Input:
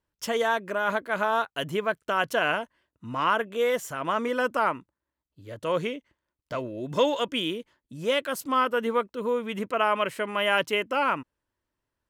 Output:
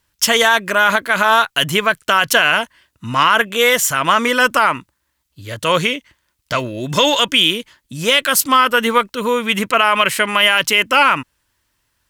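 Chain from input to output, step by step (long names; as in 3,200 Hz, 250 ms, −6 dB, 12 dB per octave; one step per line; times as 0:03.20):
harmonic generator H 2 −30 dB, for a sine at −10 dBFS
guitar amp tone stack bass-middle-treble 5-5-5
boost into a limiter +29.5 dB
level −1 dB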